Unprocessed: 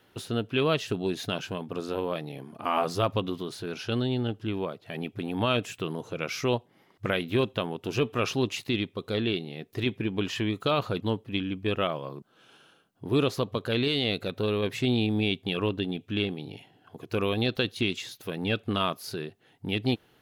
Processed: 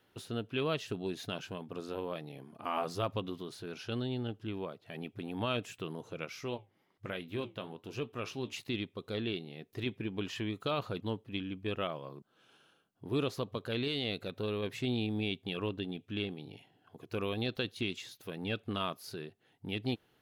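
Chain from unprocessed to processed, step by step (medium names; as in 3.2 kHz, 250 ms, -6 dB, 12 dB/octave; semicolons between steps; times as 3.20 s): 6.25–8.53 s: flange 1.1 Hz, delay 5.7 ms, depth 9.6 ms, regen -67%; trim -8 dB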